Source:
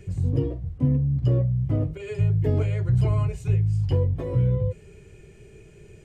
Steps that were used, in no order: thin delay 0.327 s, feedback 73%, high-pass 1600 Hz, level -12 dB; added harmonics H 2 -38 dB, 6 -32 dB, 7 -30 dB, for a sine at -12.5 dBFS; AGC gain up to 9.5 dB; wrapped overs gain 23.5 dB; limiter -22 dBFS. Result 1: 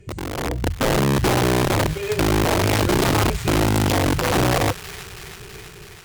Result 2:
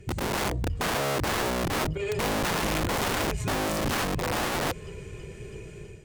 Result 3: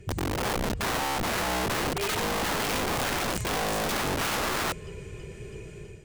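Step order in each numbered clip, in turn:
limiter > wrapped overs > AGC > added harmonics > thin delay; thin delay > wrapped overs > AGC > added harmonics > limiter; thin delay > limiter > added harmonics > AGC > wrapped overs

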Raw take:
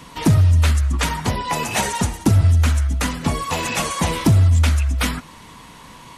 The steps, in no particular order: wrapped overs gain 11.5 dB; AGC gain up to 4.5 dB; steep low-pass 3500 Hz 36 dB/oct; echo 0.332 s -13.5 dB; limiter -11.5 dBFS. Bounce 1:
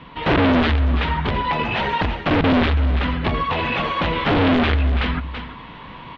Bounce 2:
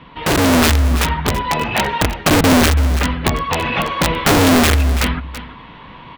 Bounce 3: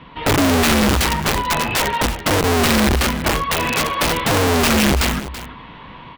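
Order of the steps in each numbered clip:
wrapped overs > echo > AGC > limiter > steep low-pass; steep low-pass > wrapped overs > echo > limiter > AGC; steep low-pass > limiter > AGC > wrapped overs > echo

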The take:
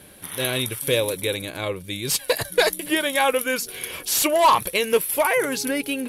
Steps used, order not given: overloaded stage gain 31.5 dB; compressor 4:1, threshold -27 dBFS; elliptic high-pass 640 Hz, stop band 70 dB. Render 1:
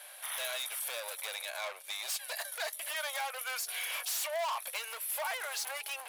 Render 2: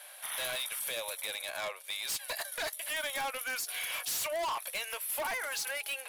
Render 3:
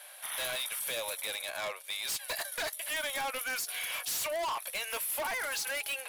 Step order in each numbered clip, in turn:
compressor > overloaded stage > elliptic high-pass; compressor > elliptic high-pass > overloaded stage; elliptic high-pass > compressor > overloaded stage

